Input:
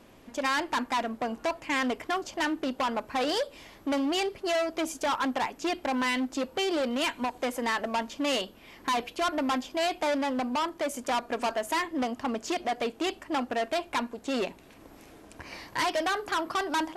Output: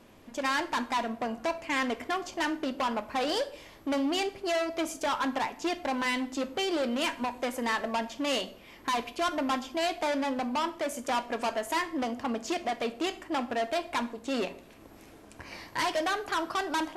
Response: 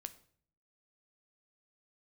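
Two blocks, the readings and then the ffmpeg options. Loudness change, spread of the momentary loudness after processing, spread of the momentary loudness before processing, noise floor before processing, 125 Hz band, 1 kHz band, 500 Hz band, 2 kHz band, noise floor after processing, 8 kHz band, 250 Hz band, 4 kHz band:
-1.0 dB, 5 LU, 5 LU, -53 dBFS, -0.5 dB, -1.0 dB, -1.5 dB, -1.0 dB, -52 dBFS, -1.0 dB, -1.0 dB, -1.0 dB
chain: -filter_complex "[1:a]atrim=start_sample=2205[a];[0:a][a]afir=irnorm=-1:irlink=0,volume=3dB"

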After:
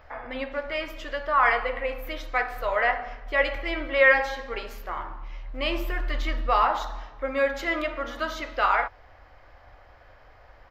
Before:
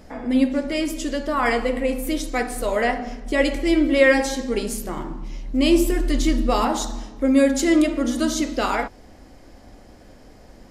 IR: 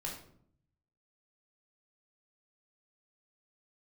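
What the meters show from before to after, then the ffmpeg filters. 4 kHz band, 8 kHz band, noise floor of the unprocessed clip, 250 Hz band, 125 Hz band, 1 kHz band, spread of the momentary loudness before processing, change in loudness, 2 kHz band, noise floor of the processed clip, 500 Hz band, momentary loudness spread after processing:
-5.5 dB, under -20 dB, -47 dBFS, -19.0 dB, -6.0 dB, +1.0 dB, 10 LU, -4.5 dB, +1.5 dB, -53 dBFS, -5.5 dB, 14 LU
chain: -af "firequalizer=gain_entry='entry(110,0);entry(180,-20);entry(550,1);entry(1200,10);entry(9300,-27);entry(14000,-2)':delay=0.05:min_phase=1,volume=-5.5dB"

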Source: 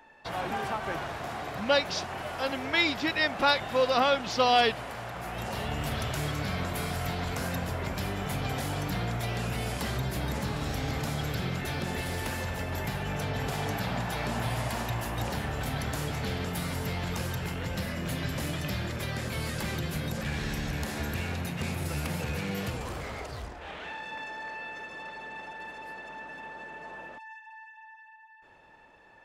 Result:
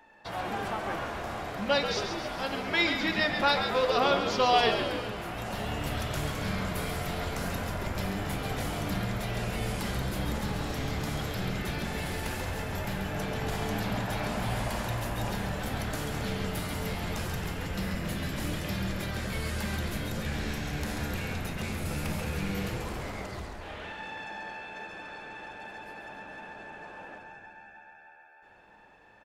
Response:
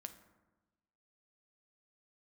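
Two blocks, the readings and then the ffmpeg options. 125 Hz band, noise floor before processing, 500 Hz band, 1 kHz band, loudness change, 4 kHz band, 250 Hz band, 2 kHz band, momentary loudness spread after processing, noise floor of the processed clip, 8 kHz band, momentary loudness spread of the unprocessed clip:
-1.5 dB, -52 dBFS, 0.0 dB, -0.5 dB, 0.0 dB, -0.5 dB, +0.5 dB, -0.5 dB, 16 LU, -54 dBFS, -0.5 dB, 15 LU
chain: -filter_complex "[0:a]asplit=9[a][b][c][d][e][f][g][h][i];[b]adelay=136,afreqshift=-77,volume=-7dB[j];[c]adelay=272,afreqshift=-154,volume=-11.2dB[k];[d]adelay=408,afreqshift=-231,volume=-15.3dB[l];[e]adelay=544,afreqshift=-308,volume=-19.5dB[m];[f]adelay=680,afreqshift=-385,volume=-23.6dB[n];[g]adelay=816,afreqshift=-462,volume=-27.8dB[o];[h]adelay=952,afreqshift=-539,volume=-31.9dB[p];[i]adelay=1088,afreqshift=-616,volume=-36.1dB[q];[a][j][k][l][m][n][o][p][q]amix=inputs=9:normalize=0[r];[1:a]atrim=start_sample=2205[s];[r][s]afir=irnorm=-1:irlink=0,volume=3.5dB"

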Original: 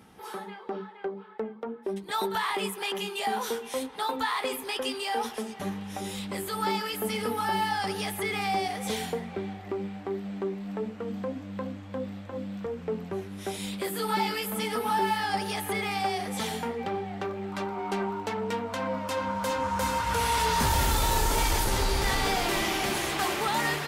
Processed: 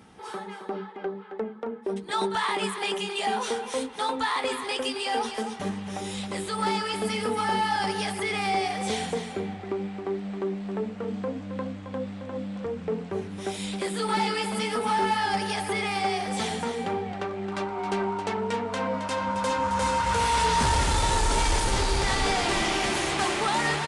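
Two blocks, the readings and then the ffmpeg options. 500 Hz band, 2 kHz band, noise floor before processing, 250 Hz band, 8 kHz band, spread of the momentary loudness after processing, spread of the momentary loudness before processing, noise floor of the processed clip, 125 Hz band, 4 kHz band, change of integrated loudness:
+2.5 dB, +2.0 dB, -44 dBFS, +2.5 dB, +1.5 dB, 10 LU, 11 LU, -40 dBFS, +2.0 dB, +2.0 dB, +2.0 dB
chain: -filter_complex "[0:a]volume=21.5dB,asoftclip=hard,volume=-21.5dB,asplit=2[a][b];[b]aecho=0:1:269:0.355[c];[a][c]amix=inputs=2:normalize=0,aresample=22050,aresample=44100,volume=2dB"

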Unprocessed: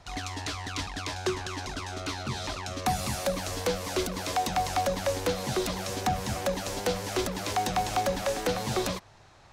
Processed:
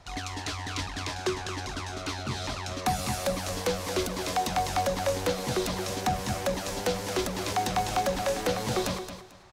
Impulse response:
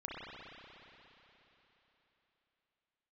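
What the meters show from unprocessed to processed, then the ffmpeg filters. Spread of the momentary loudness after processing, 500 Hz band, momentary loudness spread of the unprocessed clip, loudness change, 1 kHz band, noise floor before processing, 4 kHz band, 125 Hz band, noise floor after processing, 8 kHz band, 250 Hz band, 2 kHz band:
6 LU, +0.5 dB, 6 LU, +0.5 dB, +0.5 dB, -55 dBFS, +0.5 dB, +0.5 dB, -41 dBFS, +0.5 dB, +0.5 dB, +0.5 dB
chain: -af "aecho=1:1:222|444|666:0.316|0.0727|0.0167"

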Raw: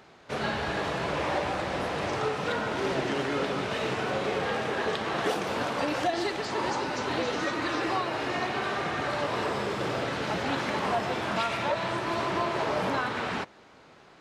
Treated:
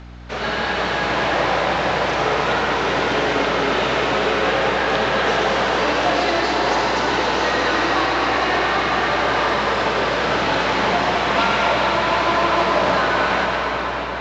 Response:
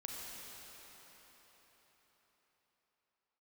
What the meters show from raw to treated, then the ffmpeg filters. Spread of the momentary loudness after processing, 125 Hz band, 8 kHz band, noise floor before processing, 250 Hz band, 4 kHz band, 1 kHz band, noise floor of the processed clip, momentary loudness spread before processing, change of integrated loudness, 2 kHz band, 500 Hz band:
3 LU, +6.5 dB, +8.5 dB, -54 dBFS, +7.5 dB, +12.0 dB, +11.5 dB, -24 dBFS, 2 LU, +11.0 dB, +12.5 dB, +10.0 dB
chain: -filter_complex "[0:a]equalizer=f=240:t=o:w=2.7:g=-5.5,acrossover=split=6000[a][b];[a]acontrast=78[c];[c][b]amix=inputs=2:normalize=0,highpass=140[d];[1:a]atrim=start_sample=2205,asetrate=31752,aresample=44100[e];[d][e]afir=irnorm=-1:irlink=0,areverse,acompressor=mode=upward:threshold=-43dB:ratio=2.5,areverse,aeval=exprs='val(0)+0.00891*(sin(2*PI*60*n/s)+sin(2*PI*2*60*n/s)/2+sin(2*PI*3*60*n/s)/3+sin(2*PI*4*60*n/s)/4+sin(2*PI*5*60*n/s)/5)':c=same,volume=4.5dB" -ar 16000 -c:a pcm_alaw

